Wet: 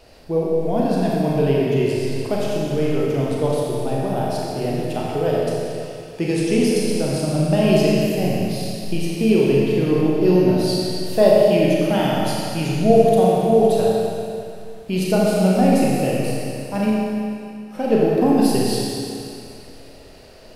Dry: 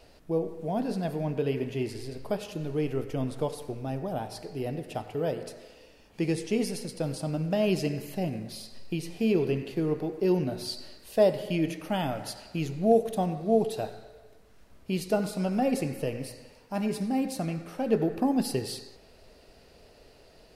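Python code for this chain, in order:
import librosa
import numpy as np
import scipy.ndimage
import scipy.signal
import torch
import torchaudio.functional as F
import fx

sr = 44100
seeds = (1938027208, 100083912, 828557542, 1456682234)

y = fx.gate_flip(x, sr, shuts_db=-33.0, range_db=-33, at=(16.89, 17.75), fade=0.02)
y = fx.rev_schroeder(y, sr, rt60_s=2.5, comb_ms=29, drr_db=-4.0)
y = y * 10.0 ** (5.5 / 20.0)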